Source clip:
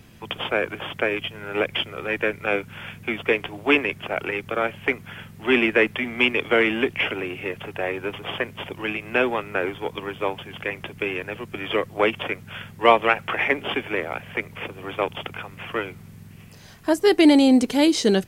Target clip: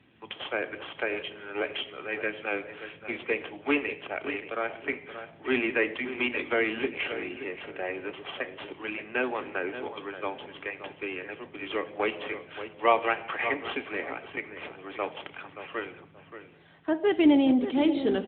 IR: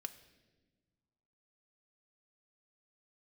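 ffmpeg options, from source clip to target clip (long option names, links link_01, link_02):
-filter_complex "[0:a]lowshelf=frequency=200:gain=-7.5,asplit=2[link_01][link_02];[link_02]adelay=577,lowpass=frequency=2000:poles=1,volume=-10dB,asplit=2[link_03][link_04];[link_04]adelay=577,lowpass=frequency=2000:poles=1,volume=0.25,asplit=2[link_05][link_06];[link_06]adelay=577,lowpass=frequency=2000:poles=1,volume=0.25[link_07];[link_01][link_03][link_05][link_07]amix=inputs=4:normalize=0,acrossover=split=120|2000[link_08][link_09][link_10];[link_10]asoftclip=type=tanh:threshold=-18dB[link_11];[link_08][link_09][link_11]amix=inputs=3:normalize=0[link_12];[1:a]atrim=start_sample=2205,afade=type=out:start_time=0.38:duration=0.01,atrim=end_sample=17199,asetrate=57330,aresample=44100[link_13];[link_12][link_13]afir=irnorm=-1:irlink=0" -ar 8000 -c:a libopencore_amrnb -b:a 10200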